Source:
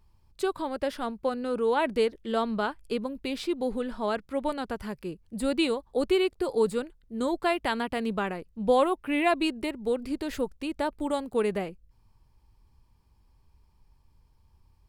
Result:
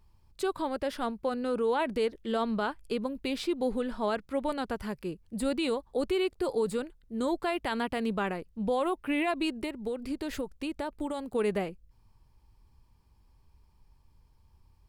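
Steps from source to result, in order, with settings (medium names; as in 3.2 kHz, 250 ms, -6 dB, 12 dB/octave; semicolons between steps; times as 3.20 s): peak limiter -20.5 dBFS, peak gain reduction 8.5 dB; 9.49–11.35 s: compression, threshold -30 dBFS, peak gain reduction 6 dB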